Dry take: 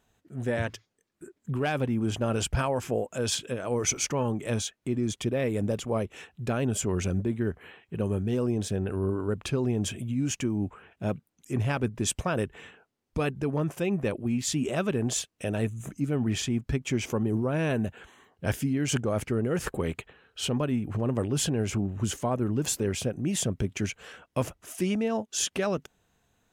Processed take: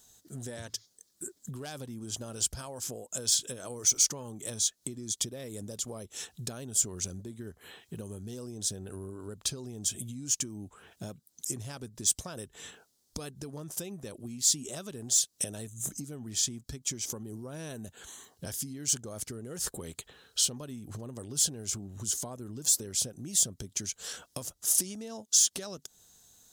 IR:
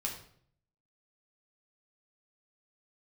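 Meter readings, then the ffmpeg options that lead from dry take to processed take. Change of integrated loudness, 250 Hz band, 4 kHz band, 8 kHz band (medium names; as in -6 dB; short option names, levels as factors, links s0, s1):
-1.5 dB, -13.5 dB, +1.5 dB, +6.5 dB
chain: -filter_complex "[0:a]acrossover=split=3000[s0][s1];[s1]asoftclip=type=tanh:threshold=0.0631[s2];[s0][s2]amix=inputs=2:normalize=0,acompressor=threshold=0.0126:ratio=16,aexciter=amount=8.5:drive=8:freq=3800,highshelf=f=6300:g=-7.5"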